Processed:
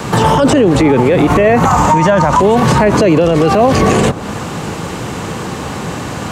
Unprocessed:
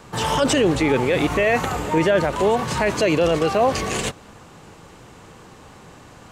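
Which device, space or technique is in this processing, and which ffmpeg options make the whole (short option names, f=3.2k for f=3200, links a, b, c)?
mastering chain: -filter_complex "[0:a]asettb=1/sr,asplit=3[a][b][c];[a]atrim=end=1.654[d];[b]atrim=start=1.65:end=2.4,asetpts=PTS-STARTPTS,afade=t=in:d=0.004:c=qsin,afade=t=out:st=0.746:d=0.004:c=qsin,equalizer=f=400:t=o:w=0.67:g=-11,equalizer=f=1k:t=o:w=0.67:g=12,equalizer=f=6.3k:t=o:w=0.67:g=11[e];[c]atrim=start=2.396[f];[d][e]acrossfade=d=0.004:c1=hsin:c2=qsin[g];[g][f]acrossfade=d=0.004:c1=qsin:c2=hsin,highpass=56,equalizer=f=190:t=o:w=1.5:g=3.5,acrossover=split=320|1500[h][i][j];[h]acompressor=threshold=-22dB:ratio=4[k];[i]acompressor=threshold=-21dB:ratio=4[l];[j]acompressor=threshold=-38dB:ratio=4[m];[k][l][m]amix=inputs=3:normalize=0,acompressor=threshold=-29dB:ratio=1.5,alimiter=level_in=22.5dB:limit=-1dB:release=50:level=0:latency=1,volume=-1dB"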